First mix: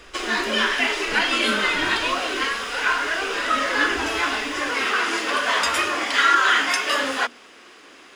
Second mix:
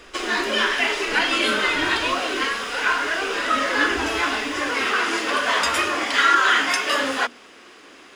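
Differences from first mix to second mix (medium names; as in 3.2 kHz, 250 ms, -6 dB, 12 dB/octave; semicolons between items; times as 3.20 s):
speech -6.0 dB; master: add bass shelf 500 Hz +3 dB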